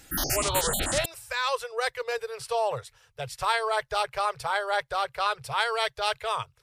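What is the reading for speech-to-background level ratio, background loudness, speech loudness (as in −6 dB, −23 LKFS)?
−1.5 dB, −27.5 LKFS, −29.0 LKFS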